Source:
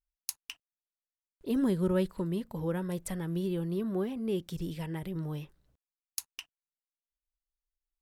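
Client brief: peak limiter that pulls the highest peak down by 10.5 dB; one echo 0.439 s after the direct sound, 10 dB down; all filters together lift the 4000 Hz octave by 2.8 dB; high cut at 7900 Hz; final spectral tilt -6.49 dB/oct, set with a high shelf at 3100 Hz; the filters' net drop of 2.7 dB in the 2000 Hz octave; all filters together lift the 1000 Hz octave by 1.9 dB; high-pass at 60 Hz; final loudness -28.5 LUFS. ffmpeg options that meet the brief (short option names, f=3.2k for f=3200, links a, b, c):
-af "highpass=60,lowpass=7.9k,equalizer=f=1k:t=o:g=3.5,equalizer=f=2k:t=o:g=-7.5,highshelf=f=3.1k:g=3,equalizer=f=4k:t=o:g=4.5,alimiter=level_in=1dB:limit=-24dB:level=0:latency=1,volume=-1dB,aecho=1:1:439:0.316,volume=6dB"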